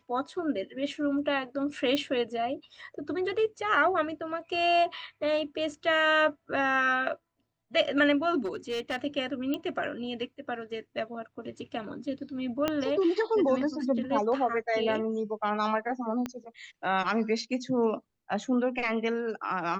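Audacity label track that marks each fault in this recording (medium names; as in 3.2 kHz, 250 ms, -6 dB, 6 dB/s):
1.950000	1.950000	pop -16 dBFS
8.450000	8.970000	clipped -27.5 dBFS
9.540000	9.540000	pop -19 dBFS
12.680000	12.680000	pop -13 dBFS
16.260000	16.260000	pop -19 dBFS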